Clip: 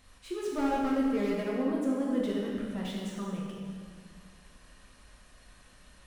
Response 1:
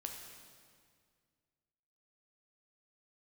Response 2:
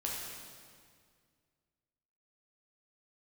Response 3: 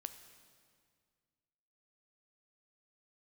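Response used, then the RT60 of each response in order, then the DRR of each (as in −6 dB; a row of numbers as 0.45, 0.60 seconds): 2; 2.0, 2.0, 2.0 seconds; 2.0, −4.0, 9.0 decibels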